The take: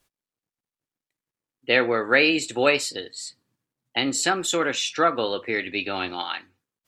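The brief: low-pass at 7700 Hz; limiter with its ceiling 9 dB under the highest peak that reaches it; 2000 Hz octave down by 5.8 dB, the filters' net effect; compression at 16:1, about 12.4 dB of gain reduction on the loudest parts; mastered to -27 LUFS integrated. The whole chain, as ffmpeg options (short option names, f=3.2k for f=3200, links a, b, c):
-af "lowpass=7.7k,equalizer=f=2k:t=o:g=-7.5,acompressor=threshold=-28dB:ratio=16,volume=7.5dB,alimiter=limit=-15.5dB:level=0:latency=1"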